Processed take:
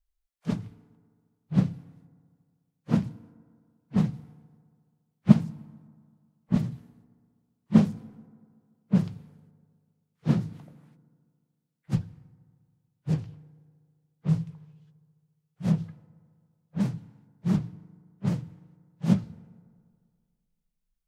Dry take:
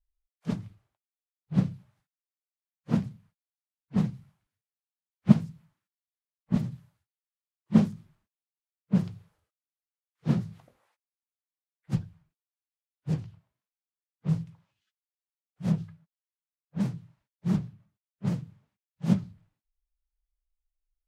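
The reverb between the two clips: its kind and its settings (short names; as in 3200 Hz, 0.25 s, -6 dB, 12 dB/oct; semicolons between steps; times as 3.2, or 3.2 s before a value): FDN reverb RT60 2 s, low-frequency decay 0.95×, high-frequency decay 0.45×, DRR 19 dB; gain +2 dB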